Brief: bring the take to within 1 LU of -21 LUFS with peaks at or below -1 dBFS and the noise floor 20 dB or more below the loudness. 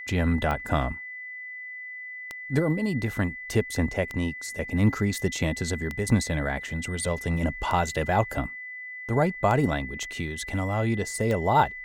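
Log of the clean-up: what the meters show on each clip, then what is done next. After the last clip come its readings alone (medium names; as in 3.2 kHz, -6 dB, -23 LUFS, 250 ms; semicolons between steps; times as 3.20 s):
clicks found 7; steady tone 2 kHz; tone level -36 dBFS; loudness -27.5 LUFS; peak level -8.5 dBFS; loudness target -21.0 LUFS
-> de-click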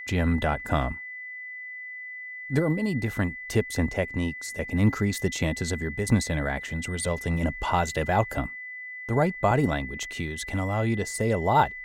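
clicks found 0; steady tone 2 kHz; tone level -36 dBFS
-> band-stop 2 kHz, Q 30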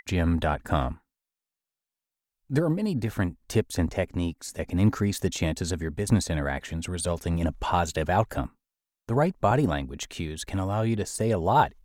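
steady tone not found; loudness -27.5 LUFS; peak level -8.5 dBFS; loudness target -21.0 LUFS
-> trim +6.5 dB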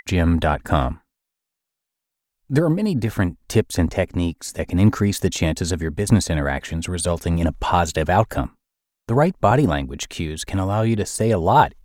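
loudness -21.0 LUFS; peak level -2.0 dBFS; noise floor -83 dBFS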